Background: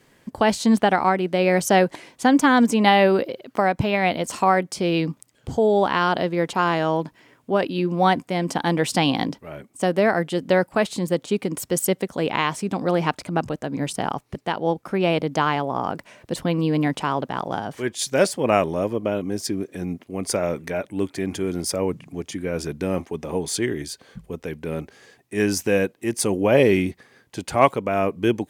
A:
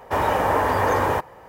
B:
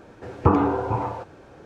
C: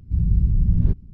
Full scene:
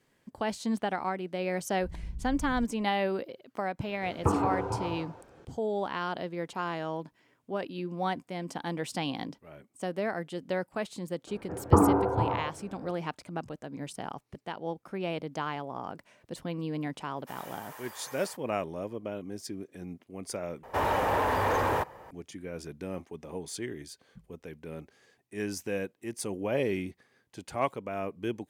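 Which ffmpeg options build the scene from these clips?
-filter_complex "[2:a]asplit=2[s0][s1];[1:a]asplit=2[s2][s3];[0:a]volume=0.224[s4];[3:a]equalizer=f=110:t=o:w=1.1:g=-11.5[s5];[s0]aecho=1:1:186:0.355[s6];[s1]lowpass=1400[s7];[s2]aderivative[s8];[s3]asoftclip=type=tanh:threshold=0.141[s9];[s4]asplit=2[s10][s11];[s10]atrim=end=20.634[s12];[s9]atrim=end=1.48,asetpts=PTS-STARTPTS,volume=0.631[s13];[s11]atrim=start=22.106[s14];[s5]atrim=end=1.13,asetpts=PTS-STARTPTS,volume=0.133,afade=t=in:d=0.004:c=hsin,afade=t=out:st=1.126:d=0.004:c=hsin,adelay=1720[s15];[s6]atrim=end=1.65,asetpts=PTS-STARTPTS,volume=0.376,afade=t=in:d=0.004:c=hsin,afade=t=out:st=1.646:d=0.004:c=hsin,adelay=3800[s16];[s7]atrim=end=1.65,asetpts=PTS-STARTPTS,volume=0.794,afade=t=in:d=0.004:c=hsin,afade=t=out:st=1.646:d=0.004:c=hsin,adelay=11270[s17];[s8]atrim=end=1.48,asetpts=PTS-STARTPTS,volume=0.299,afade=t=in:d=0.004:c=hsin,afade=t=out:st=1.476:d=0.004:c=hsin,adelay=756756S[s18];[s12][s13]acrossfade=d=0.004:c1=hsin:c2=hsin[s19];[s19][s14]acrossfade=d=0.004:c1=hsin:c2=hsin[s20];[s20][s15][s16][s17][s18]amix=inputs=5:normalize=0"

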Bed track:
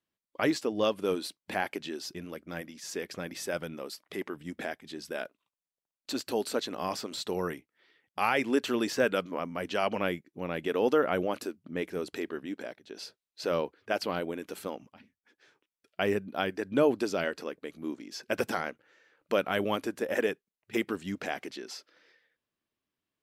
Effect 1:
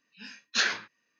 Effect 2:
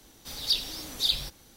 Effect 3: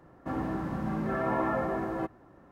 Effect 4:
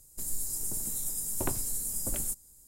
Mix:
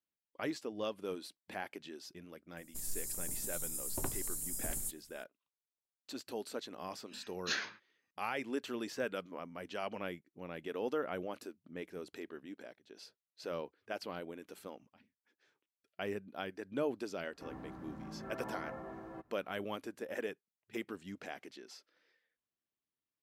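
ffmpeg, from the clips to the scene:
-filter_complex "[0:a]volume=0.282[s0];[4:a]atrim=end=2.67,asetpts=PTS-STARTPTS,volume=0.473,afade=t=in:d=0.004:c=hsin,afade=t=out:st=2.666:d=0.004:c=hsin,adelay=2570[s1];[1:a]atrim=end=1.19,asetpts=PTS-STARTPTS,volume=0.299,afade=t=in:d=0.004:c=hsin,afade=t=out:st=1.186:d=0.004:c=hsin,adelay=6920[s2];[3:a]atrim=end=2.51,asetpts=PTS-STARTPTS,volume=0.168,afade=t=in:d=0.004:c=hsin,afade=t=out:st=2.506:d=0.004:c=hsin,adelay=17150[s3];[s0][s1][s2][s3]amix=inputs=4:normalize=0"

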